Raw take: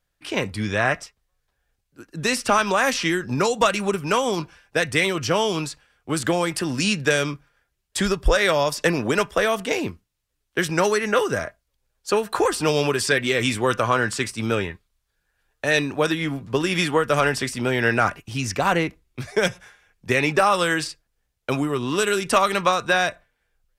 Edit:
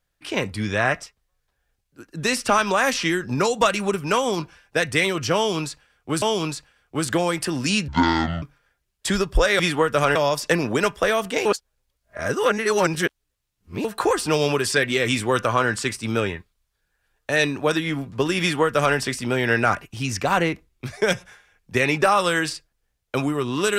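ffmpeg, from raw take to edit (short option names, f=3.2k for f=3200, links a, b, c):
-filter_complex "[0:a]asplit=8[a][b][c][d][e][f][g][h];[a]atrim=end=6.222[i];[b]atrim=start=5.358:end=7.024[j];[c]atrim=start=7.02:end=7.33,asetpts=PTS-STARTPTS,asetrate=25137,aresample=44100,atrim=end_sample=23984,asetpts=PTS-STARTPTS[k];[d]atrim=start=7.326:end=8.502[l];[e]atrim=start=16.748:end=17.312[m];[f]atrim=start=8.498:end=9.802[n];[g]atrim=start=9.798:end=12.192,asetpts=PTS-STARTPTS,areverse[o];[h]atrim=start=12.188[p];[i][j]acrossfade=d=0.004:c1=hsin:c2=hsin[q];[q][k]acrossfade=d=0.004:c1=hsin:c2=hsin[r];[r][l]acrossfade=d=0.004:c1=hsin:c2=hsin[s];[s][m]acrossfade=d=0.004:c1=hsin:c2=hsin[t];[t][n]acrossfade=d=0.004:c1=hsin:c2=hsin[u];[u][o]acrossfade=d=0.004:c1=hsin:c2=hsin[v];[v][p]acrossfade=d=0.004:c1=hsin:c2=hsin"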